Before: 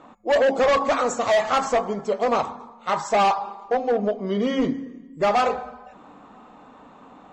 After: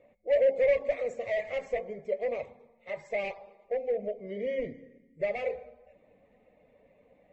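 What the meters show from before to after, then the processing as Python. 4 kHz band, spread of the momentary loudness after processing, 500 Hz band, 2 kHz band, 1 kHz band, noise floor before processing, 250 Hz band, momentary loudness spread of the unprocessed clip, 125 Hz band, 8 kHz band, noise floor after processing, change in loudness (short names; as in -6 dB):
-19.0 dB, 15 LU, -6.5 dB, -10.0 dB, -22.5 dB, -49 dBFS, -19.0 dB, 10 LU, -14.5 dB, n/a, -65 dBFS, -9.0 dB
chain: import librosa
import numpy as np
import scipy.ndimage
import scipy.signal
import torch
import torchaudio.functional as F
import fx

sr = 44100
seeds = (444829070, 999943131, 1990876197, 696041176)

y = fx.spec_quant(x, sr, step_db=15)
y = fx.curve_eq(y, sr, hz=(110.0, 290.0, 560.0, 830.0, 1400.0, 2100.0, 3100.0, 5600.0), db=(0, -14, 5, -19, -26, 5, -12, -18))
y = y * librosa.db_to_amplitude(-7.5)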